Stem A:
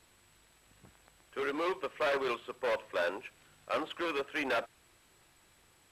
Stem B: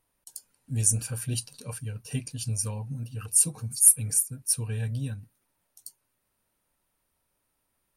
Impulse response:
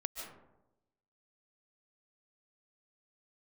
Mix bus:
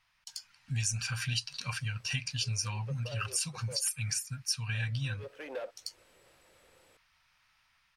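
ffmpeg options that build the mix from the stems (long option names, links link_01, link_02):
-filter_complex "[0:a]acompressor=threshold=-46dB:ratio=3,equalizer=frequency=520:width=2.4:gain=14.5,adelay=1050,volume=-2dB,asplit=3[link_01][link_02][link_03];[link_01]atrim=end=3.91,asetpts=PTS-STARTPTS,afade=type=out:start_time=3.906:duration=0.004:curve=hsin[link_04];[link_02]atrim=start=3.91:end=4.71,asetpts=PTS-STARTPTS,volume=0[link_05];[link_03]atrim=start=4.71,asetpts=PTS-STARTPTS,afade=type=in:duration=0.004:curve=hsin[link_06];[link_04][link_05][link_06]concat=n=3:v=0:a=1[link_07];[1:a]firequalizer=gain_entry='entry(140,0);entry(380,-21);entry(700,0);entry(1200,10);entry(2200,15);entry(3700,11);entry(5200,12);entry(9500,-11)':delay=0.05:min_phase=1,dynaudnorm=framelen=130:gausssize=7:maxgain=3.5dB,volume=-1.5dB,asplit=2[link_08][link_09];[link_09]apad=whole_len=307306[link_10];[link_07][link_10]sidechaincompress=threshold=-42dB:ratio=4:attack=16:release=158[link_11];[link_11][link_08]amix=inputs=2:normalize=0,acompressor=threshold=-32dB:ratio=3"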